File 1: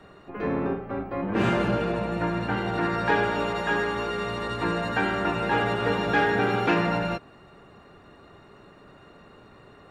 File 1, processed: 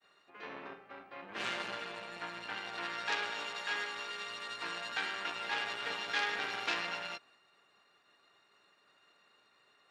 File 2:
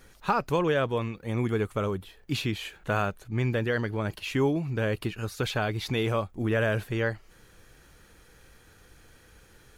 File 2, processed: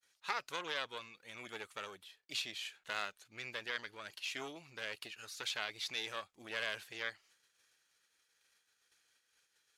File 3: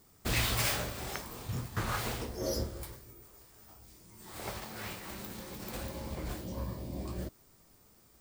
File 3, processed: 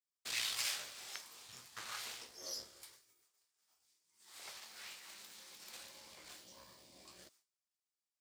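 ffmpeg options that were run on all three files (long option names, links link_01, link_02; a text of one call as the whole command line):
ffmpeg -i in.wav -af "agate=range=-33dB:threshold=-47dB:ratio=3:detection=peak,aeval=exprs='0.335*(cos(1*acos(clip(val(0)/0.335,-1,1)))-cos(1*PI/2))+0.0841*(cos(4*acos(clip(val(0)/0.335,-1,1)))-cos(4*PI/2))':channel_layout=same,bandpass=frequency=5000:width_type=q:width=0.72:csg=0,volume=-3dB" out.wav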